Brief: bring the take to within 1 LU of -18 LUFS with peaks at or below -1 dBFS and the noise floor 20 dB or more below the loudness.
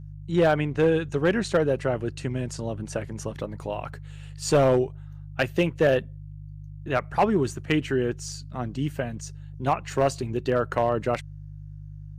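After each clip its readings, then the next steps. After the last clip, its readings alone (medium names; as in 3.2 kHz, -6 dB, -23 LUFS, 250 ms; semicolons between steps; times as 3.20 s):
clipped samples 0.4%; clipping level -13.0 dBFS; hum 50 Hz; highest harmonic 150 Hz; hum level -38 dBFS; loudness -26.0 LUFS; peak level -13.0 dBFS; loudness target -18.0 LUFS
-> clip repair -13 dBFS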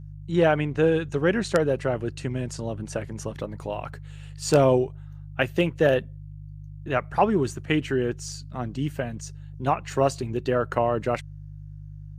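clipped samples 0.0%; hum 50 Hz; highest harmonic 150 Hz; hum level -38 dBFS
-> de-hum 50 Hz, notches 3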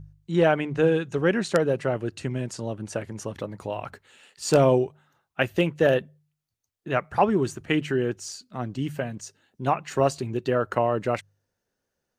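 hum not found; loudness -25.5 LUFS; peak level -4.5 dBFS; loudness target -18.0 LUFS
-> trim +7.5 dB; peak limiter -1 dBFS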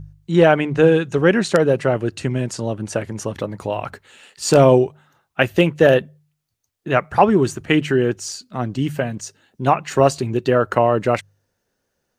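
loudness -18.5 LUFS; peak level -1.0 dBFS; noise floor -74 dBFS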